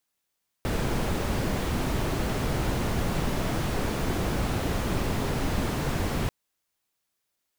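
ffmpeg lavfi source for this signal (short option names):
-f lavfi -i "anoisesrc=c=brown:a=0.221:d=5.64:r=44100:seed=1"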